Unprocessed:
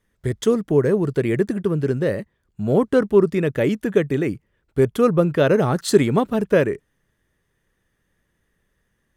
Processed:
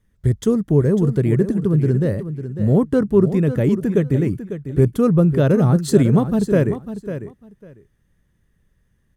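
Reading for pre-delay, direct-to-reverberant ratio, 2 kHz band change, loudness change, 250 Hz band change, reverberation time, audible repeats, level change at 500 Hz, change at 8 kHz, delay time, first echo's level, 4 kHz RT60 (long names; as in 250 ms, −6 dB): no reverb audible, no reverb audible, −5.5 dB, +2.0 dB, +4.0 dB, no reverb audible, 2, −1.5 dB, −1.5 dB, 549 ms, −11.0 dB, no reverb audible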